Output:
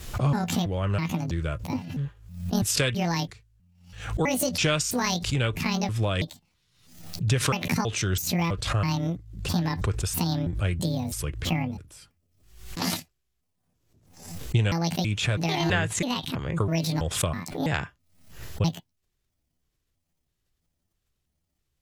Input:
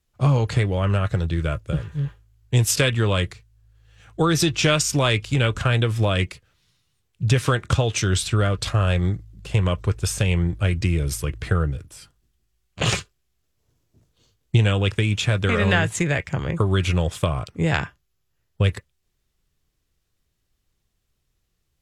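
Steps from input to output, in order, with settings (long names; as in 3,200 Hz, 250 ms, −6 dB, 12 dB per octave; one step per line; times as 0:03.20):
pitch shifter gated in a rhythm +9 semitones, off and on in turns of 327 ms
background raised ahead of every attack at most 83 dB per second
level −5.5 dB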